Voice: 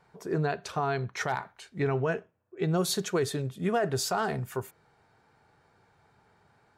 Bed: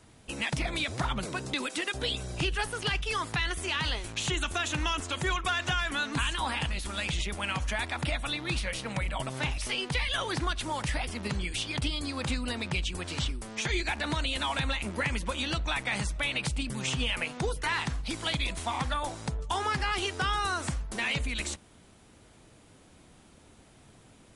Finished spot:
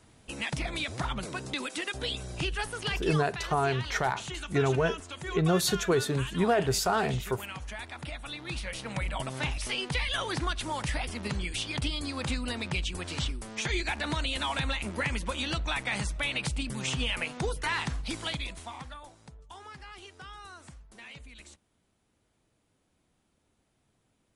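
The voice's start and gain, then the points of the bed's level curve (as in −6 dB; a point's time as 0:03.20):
2.75 s, +2.0 dB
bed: 0:03.07 −2 dB
0:03.28 −8.5 dB
0:08.15 −8.5 dB
0:09.05 −0.5 dB
0:18.14 −0.5 dB
0:19.15 −17 dB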